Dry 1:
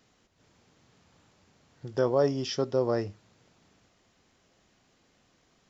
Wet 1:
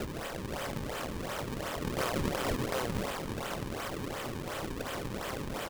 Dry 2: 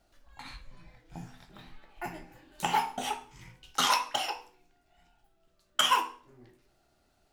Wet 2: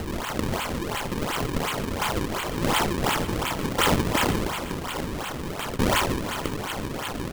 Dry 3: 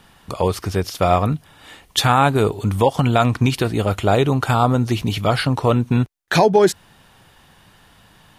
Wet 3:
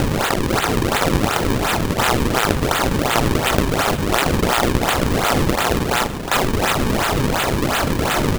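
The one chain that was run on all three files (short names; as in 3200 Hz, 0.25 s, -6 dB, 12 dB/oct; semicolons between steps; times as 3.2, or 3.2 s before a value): per-bin compression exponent 0.2; HPF 1100 Hz 12 dB/oct; bell 2900 Hz +5 dB 0.24 oct; in parallel at -2 dB: negative-ratio compressor -19 dBFS; on the sum: flange 1.3 Hz, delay 6.9 ms, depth 5.6 ms, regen +57%; decimation with a swept rate 37×, swing 160% 2.8 Hz; on a send: echo 0.483 s -17 dB; on the sum: gain -2 dB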